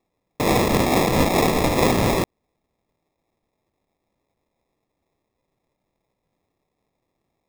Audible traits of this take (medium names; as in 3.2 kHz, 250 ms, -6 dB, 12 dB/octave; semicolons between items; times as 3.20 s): phasing stages 2, 2.3 Hz, lowest notch 480–3300 Hz; aliases and images of a low sample rate 1.5 kHz, jitter 0%